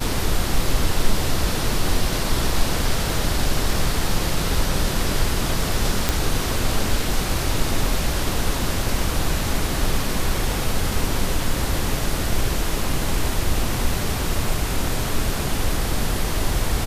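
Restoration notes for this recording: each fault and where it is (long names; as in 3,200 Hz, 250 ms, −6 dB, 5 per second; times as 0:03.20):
0:06.09: click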